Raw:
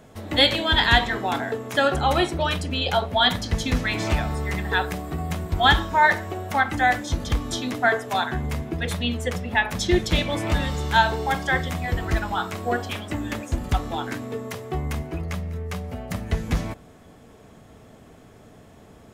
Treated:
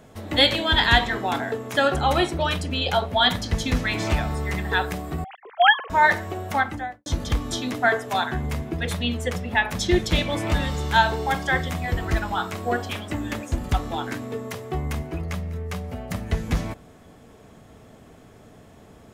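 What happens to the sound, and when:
0:05.24–0:05.90: three sine waves on the formant tracks
0:06.51–0:07.06: fade out and dull

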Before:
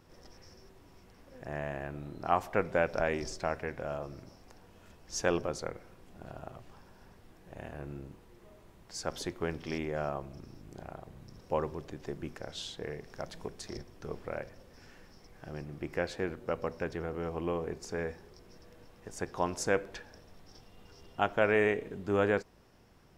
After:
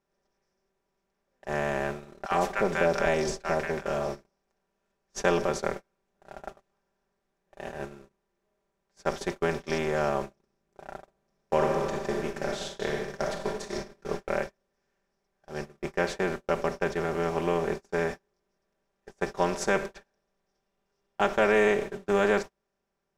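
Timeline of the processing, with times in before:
0:02.25–0:04.26: multiband delay without the direct sound highs, lows 60 ms, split 960 Hz
0:11.02–0:14.04: thrown reverb, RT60 1.4 s, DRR 2 dB
whole clip: compressor on every frequency bin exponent 0.6; noise gate −32 dBFS, range −38 dB; comb filter 5.1 ms, depth 72%

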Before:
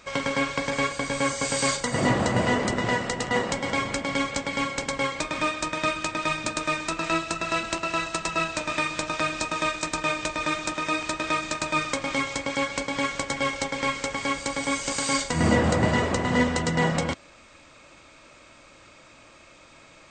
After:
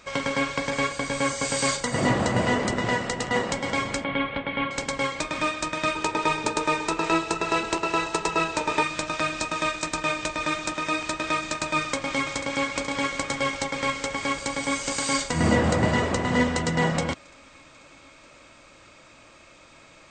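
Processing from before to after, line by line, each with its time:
0:04.04–0:04.71: Butterworth low-pass 3,500 Hz 48 dB per octave
0:05.95–0:08.83: hollow resonant body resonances 430/870 Hz, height 17 dB, ringing for 55 ms
0:11.77–0:12.58: delay throw 490 ms, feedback 80%, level −10.5 dB

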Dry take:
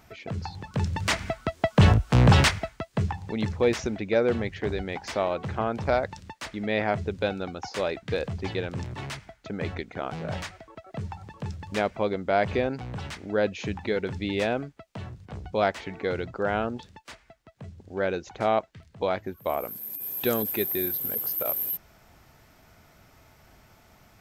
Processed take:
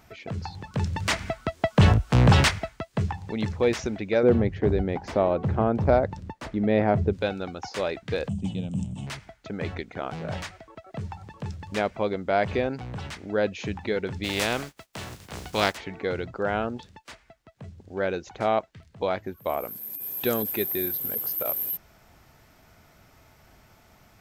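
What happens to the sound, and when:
0:04.23–0:07.13: tilt shelving filter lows +8 dB, about 1,100 Hz
0:08.29–0:09.07: drawn EQ curve 120 Hz 0 dB, 200 Hz +12 dB, 380 Hz −13 dB, 680 Hz −6 dB, 1,800 Hz −26 dB, 3,000 Hz −1 dB, 4,500 Hz −16 dB, 8,500 Hz +11 dB, 13,000 Hz −26 dB
0:14.23–0:15.76: compressing power law on the bin magnitudes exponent 0.51

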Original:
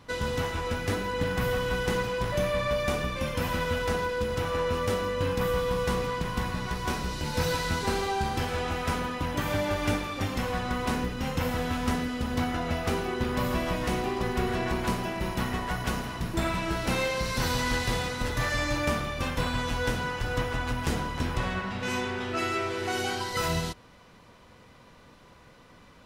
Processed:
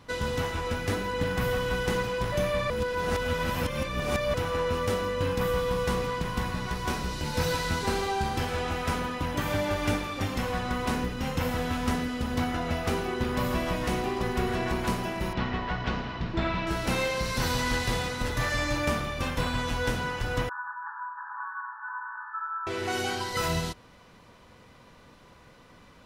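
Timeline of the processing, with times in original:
0:02.70–0:04.34: reverse
0:15.33–0:16.67: low-pass filter 4,500 Hz 24 dB per octave
0:20.49–0:22.67: linear-phase brick-wall band-pass 820–1,800 Hz

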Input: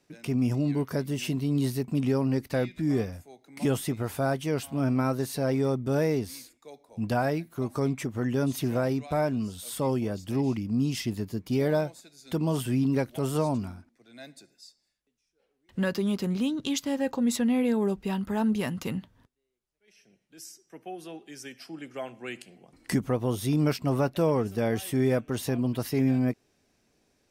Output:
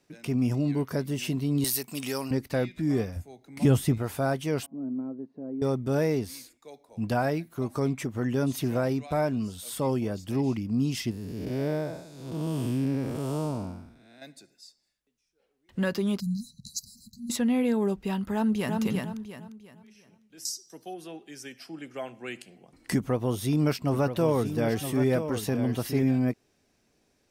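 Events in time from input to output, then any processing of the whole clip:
0:01.64–0:02.31: spectral tilt +4.5 dB per octave
0:03.16–0:03.98: parametric band 70 Hz +11.5 dB 3 octaves
0:04.66–0:05.62: four-pole ladder band-pass 290 Hz, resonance 50%
0:11.11–0:14.22: spectrum smeared in time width 304 ms
0:16.20–0:17.30: linear-phase brick-wall band-stop 220–3,900 Hz
0:18.33–0:18.81: delay throw 350 ms, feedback 35%, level −3.5 dB
0:20.45–0:20.94: high shelf with overshoot 3,200 Hz +10.5 dB, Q 3
0:22.97–0:26.03: single-tap delay 969 ms −9 dB

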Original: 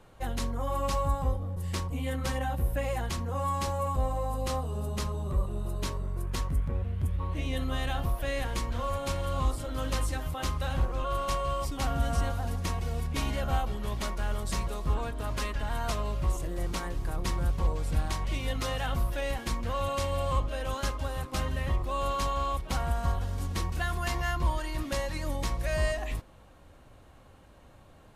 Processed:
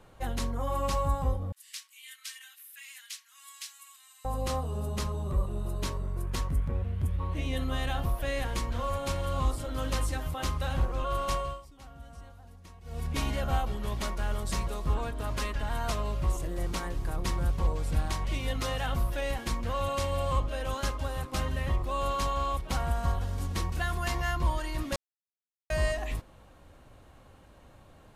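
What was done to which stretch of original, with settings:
0:01.52–0:04.25: Bessel high-pass filter 2,900 Hz, order 6
0:11.37–0:13.08: duck −19.5 dB, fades 0.25 s
0:24.96–0:25.70: silence

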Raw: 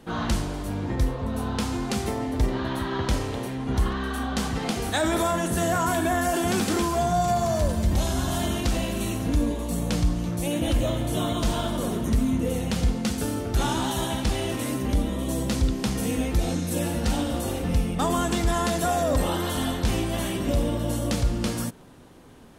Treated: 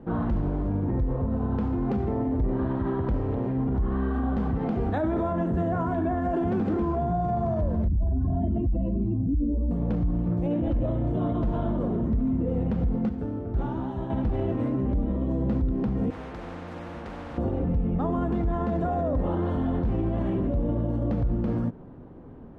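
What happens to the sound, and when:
0:07.88–0:09.71: expanding power law on the bin magnitudes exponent 2.1
0:13.09–0:14.10: clip gain −8 dB
0:16.10–0:17.38: every bin compressed towards the loudest bin 10 to 1
whole clip: low-pass filter 1,500 Hz 12 dB per octave; tilt shelving filter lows +6.5 dB, about 850 Hz; brickwall limiter −19 dBFS

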